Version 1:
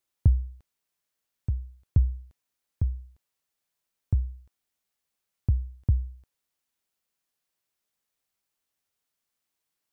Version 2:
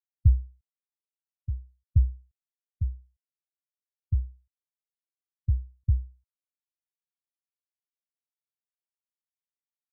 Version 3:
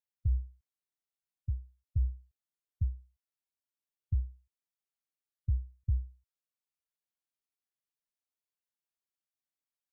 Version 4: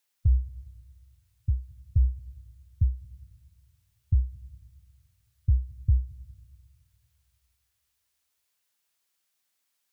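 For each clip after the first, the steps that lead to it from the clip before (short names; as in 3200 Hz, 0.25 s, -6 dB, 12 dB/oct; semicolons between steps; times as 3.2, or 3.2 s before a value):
spectral expander 1.5:1
limiter -20 dBFS, peak gain reduction 10 dB; gain -2.5 dB
on a send at -21 dB: reverb RT60 2.1 s, pre-delay 0.19 s; on the sum: mismatched tape noise reduction encoder only; gain +7.5 dB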